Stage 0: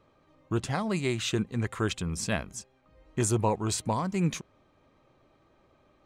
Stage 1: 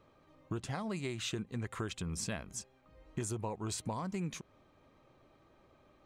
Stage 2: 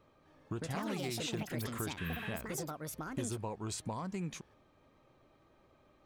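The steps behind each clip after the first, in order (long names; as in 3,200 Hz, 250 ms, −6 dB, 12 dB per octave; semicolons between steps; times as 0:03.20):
downward compressor 6 to 1, threshold −34 dBFS, peak gain reduction 12.5 dB; level −1 dB
delay with pitch and tempo change per echo 255 ms, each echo +6 semitones, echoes 2; healed spectral selection 0:02.00–0:02.28, 940–12,000 Hz after; level −1.5 dB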